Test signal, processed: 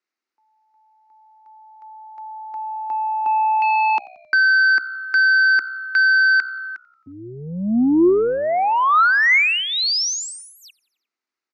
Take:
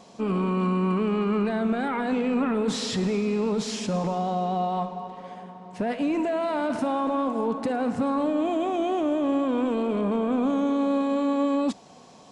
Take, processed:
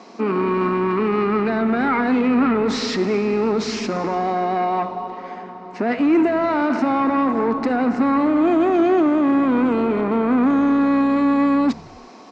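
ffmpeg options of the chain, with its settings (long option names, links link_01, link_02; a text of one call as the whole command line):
ffmpeg -i in.wav -filter_complex "[0:a]aeval=exprs='0.178*sin(PI/2*1.58*val(0)/0.178)':channel_layout=same,highpass=frequency=230:width=0.5412,highpass=frequency=230:width=1.3066,equalizer=frequency=240:width_type=q:width=4:gain=4,equalizer=frequency=350:width_type=q:width=4:gain=6,equalizer=frequency=560:width_type=q:width=4:gain=-5,equalizer=frequency=1300:width_type=q:width=4:gain=5,equalizer=frequency=2100:width_type=q:width=4:gain=5,equalizer=frequency=3300:width_type=q:width=4:gain=-8,lowpass=frequency=5600:width=0.5412,lowpass=frequency=5600:width=1.3066,asplit=5[link_01][link_02][link_03][link_04][link_05];[link_02]adelay=89,afreqshift=-64,volume=-23.5dB[link_06];[link_03]adelay=178,afreqshift=-128,volume=-27.9dB[link_07];[link_04]adelay=267,afreqshift=-192,volume=-32.4dB[link_08];[link_05]adelay=356,afreqshift=-256,volume=-36.8dB[link_09];[link_01][link_06][link_07][link_08][link_09]amix=inputs=5:normalize=0" out.wav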